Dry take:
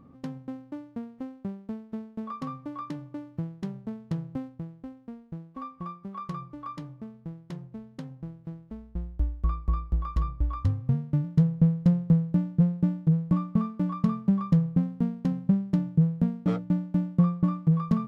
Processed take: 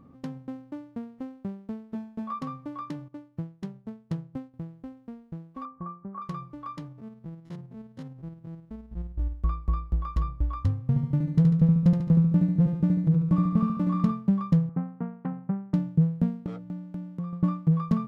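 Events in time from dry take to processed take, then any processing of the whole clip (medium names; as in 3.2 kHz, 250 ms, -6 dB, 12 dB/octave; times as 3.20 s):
1.92–2.39 s: doubling 17 ms -4 dB
3.08–4.54 s: upward expansion, over -49 dBFS
5.65–6.22 s: low-pass 1.6 kHz 24 dB/octave
6.88–9.35 s: spectrogram pixelated in time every 50 ms
10.87–14.11 s: feedback delay 72 ms, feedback 55%, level -4 dB
14.69–15.74 s: cabinet simulation 180–2100 Hz, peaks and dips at 220 Hz -8 dB, 310 Hz -4 dB, 570 Hz -5 dB, 810 Hz +6 dB, 1.3 kHz +6 dB
16.46–17.33 s: compression 2:1, threshold -40 dBFS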